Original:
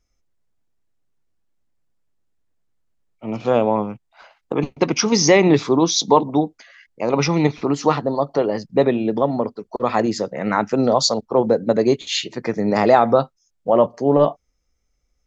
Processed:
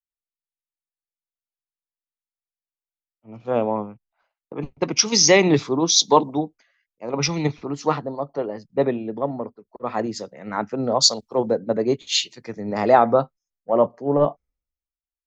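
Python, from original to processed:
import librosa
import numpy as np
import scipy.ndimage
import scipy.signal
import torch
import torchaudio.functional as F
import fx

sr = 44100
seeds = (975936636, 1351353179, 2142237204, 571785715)

y = fx.band_widen(x, sr, depth_pct=100)
y = y * librosa.db_to_amplitude(-5.0)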